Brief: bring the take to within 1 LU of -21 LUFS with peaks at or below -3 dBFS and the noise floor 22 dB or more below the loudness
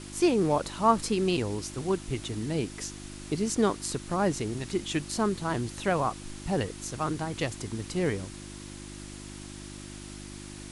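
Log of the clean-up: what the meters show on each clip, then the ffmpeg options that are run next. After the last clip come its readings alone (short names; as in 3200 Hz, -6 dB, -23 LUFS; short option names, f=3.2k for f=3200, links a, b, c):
hum 50 Hz; harmonics up to 350 Hz; hum level -42 dBFS; noise floor -43 dBFS; noise floor target -52 dBFS; loudness -29.5 LUFS; peak -10.0 dBFS; loudness target -21.0 LUFS
-> -af "bandreject=f=50:t=h:w=4,bandreject=f=100:t=h:w=4,bandreject=f=150:t=h:w=4,bandreject=f=200:t=h:w=4,bandreject=f=250:t=h:w=4,bandreject=f=300:t=h:w=4,bandreject=f=350:t=h:w=4"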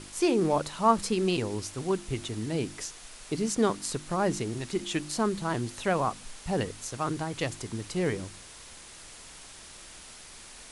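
hum none; noise floor -48 dBFS; noise floor target -52 dBFS
-> -af "afftdn=nr=6:nf=-48"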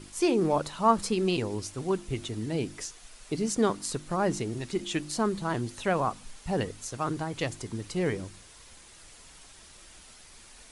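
noise floor -52 dBFS; loudness -30.0 LUFS; peak -10.0 dBFS; loudness target -21.0 LUFS
-> -af "volume=9dB,alimiter=limit=-3dB:level=0:latency=1"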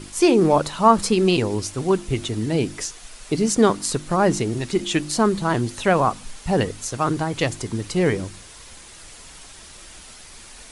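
loudness -21.0 LUFS; peak -3.0 dBFS; noise floor -43 dBFS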